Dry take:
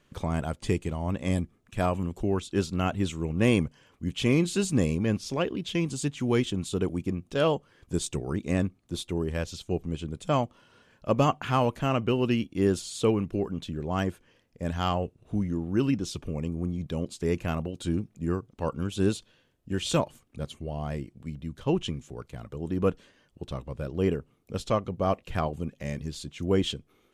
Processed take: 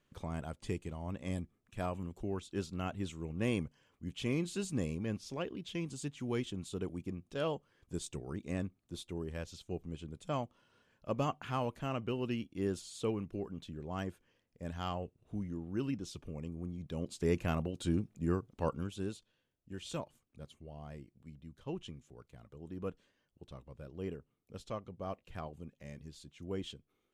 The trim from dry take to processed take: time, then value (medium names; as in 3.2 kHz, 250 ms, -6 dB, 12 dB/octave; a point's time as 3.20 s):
16.80 s -11 dB
17.22 s -4 dB
18.68 s -4 dB
19.08 s -15 dB